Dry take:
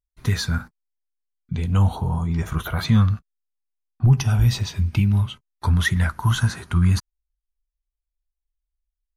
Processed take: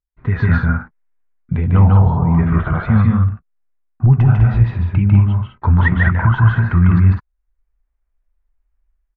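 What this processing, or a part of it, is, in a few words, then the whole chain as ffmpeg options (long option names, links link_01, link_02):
action camera in a waterproof case: -filter_complex "[0:a]asplit=3[link_01][link_02][link_03];[link_01]afade=type=out:start_time=0.6:duration=0.02[link_04];[link_02]adynamicequalizer=threshold=0.00224:dfrequency=1900:dqfactor=0.83:tfrequency=1900:tqfactor=0.83:attack=5:release=100:ratio=0.375:range=2:mode=boostabove:tftype=bell,afade=type=in:start_time=0.6:duration=0.02,afade=type=out:start_time=1.59:duration=0.02[link_05];[link_03]afade=type=in:start_time=1.59:duration=0.02[link_06];[link_04][link_05][link_06]amix=inputs=3:normalize=0,lowpass=frequency=2000:width=0.5412,lowpass=frequency=2000:width=1.3066,aecho=1:1:148.7|201.2:0.794|0.501,dynaudnorm=framelen=100:gausssize=7:maxgain=14dB,volume=-1dB" -ar 44100 -c:a aac -b:a 96k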